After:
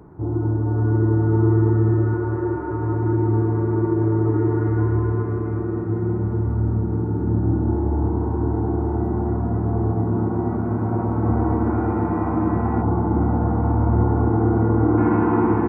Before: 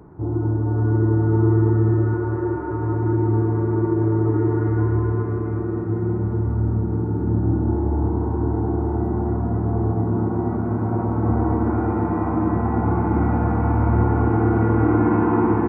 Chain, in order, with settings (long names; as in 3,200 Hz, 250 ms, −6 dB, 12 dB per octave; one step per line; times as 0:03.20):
0:12.82–0:14.98: low-pass filter 1,100 Hz 12 dB per octave